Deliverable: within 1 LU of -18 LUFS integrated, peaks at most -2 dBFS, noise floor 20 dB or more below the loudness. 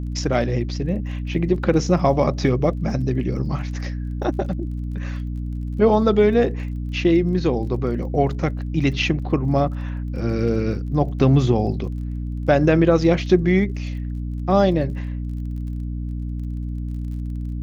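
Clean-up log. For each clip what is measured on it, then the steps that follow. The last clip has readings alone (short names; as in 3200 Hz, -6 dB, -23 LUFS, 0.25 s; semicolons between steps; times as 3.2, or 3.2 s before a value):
ticks 27/s; hum 60 Hz; harmonics up to 300 Hz; hum level -24 dBFS; loudness -21.5 LUFS; peak -4.0 dBFS; loudness target -18.0 LUFS
-> de-click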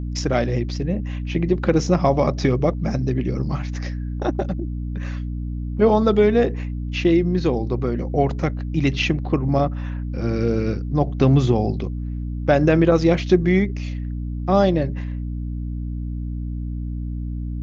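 ticks 0/s; hum 60 Hz; harmonics up to 300 Hz; hum level -24 dBFS
-> de-hum 60 Hz, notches 5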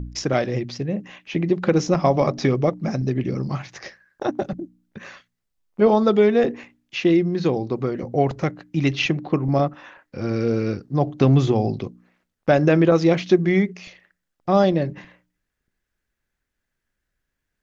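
hum none; loudness -21.0 LUFS; peak -4.0 dBFS; loudness target -18.0 LUFS
-> gain +3 dB; limiter -2 dBFS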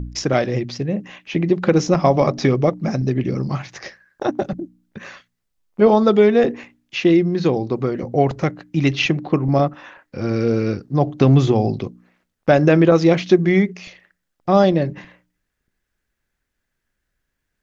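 loudness -18.0 LUFS; peak -2.0 dBFS; noise floor -77 dBFS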